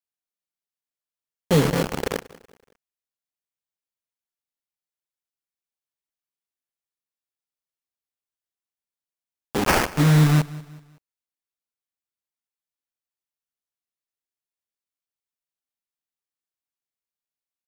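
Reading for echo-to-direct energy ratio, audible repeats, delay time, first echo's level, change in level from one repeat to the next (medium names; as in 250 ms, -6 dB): -19.0 dB, 2, 188 ms, -20.0 dB, -7.5 dB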